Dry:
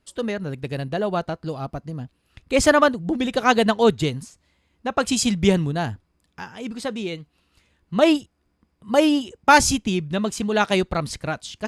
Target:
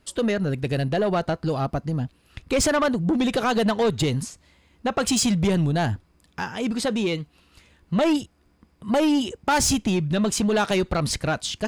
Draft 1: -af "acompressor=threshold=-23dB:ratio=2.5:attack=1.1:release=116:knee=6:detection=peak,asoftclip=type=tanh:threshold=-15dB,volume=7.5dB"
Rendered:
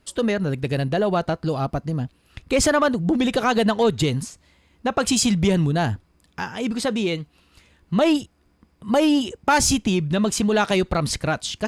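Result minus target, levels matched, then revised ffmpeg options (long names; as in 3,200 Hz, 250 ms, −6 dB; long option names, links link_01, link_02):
soft clipping: distortion −10 dB
-af "acompressor=threshold=-23dB:ratio=2.5:attack=1.1:release=116:knee=6:detection=peak,asoftclip=type=tanh:threshold=-22.5dB,volume=7.5dB"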